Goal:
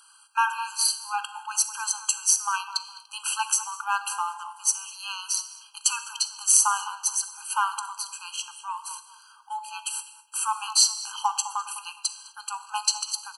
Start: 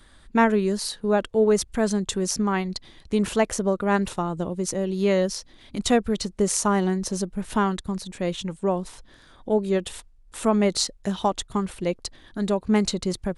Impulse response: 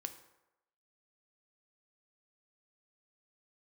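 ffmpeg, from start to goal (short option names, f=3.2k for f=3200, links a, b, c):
-filter_complex "[0:a]asplit=2[a][b];[b]adelay=207,lowpass=f=1.4k:p=1,volume=-10.5dB,asplit=2[c][d];[d]adelay=207,lowpass=f=1.4k:p=1,volume=0.36,asplit=2[e][f];[f]adelay=207,lowpass=f=1.4k:p=1,volume=0.36,asplit=2[g][h];[h]adelay=207,lowpass=f=1.4k:p=1,volume=0.36[i];[a][c][e][g][i]amix=inputs=5:normalize=0,crystalizer=i=2.5:c=0,asplit=2[j][k];[1:a]atrim=start_sample=2205,atrim=end_sample=6174,asetrate=23373,aresample=44100[l];[k][l]afir=irnorm=-1:irlink=0,volume=6.5dB[m];[j][m]amix=inputs=2:normalize=0,afftfilt=real='re*eq(mod(floor(b*sr/1024/810),2),1)':imag='im*eq(mod(floor(b*sr/1024/810),2),1)':win_size=1024:overlap=0.75,volume=-9dB"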